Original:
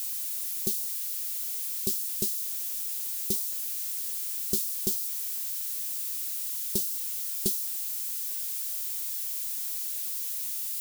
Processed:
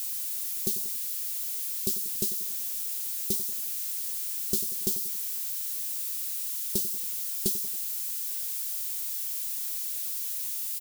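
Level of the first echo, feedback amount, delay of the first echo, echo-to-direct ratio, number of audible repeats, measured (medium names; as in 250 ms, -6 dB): -13.5 dB, 49%, 93 ms, -12.5 dB, 4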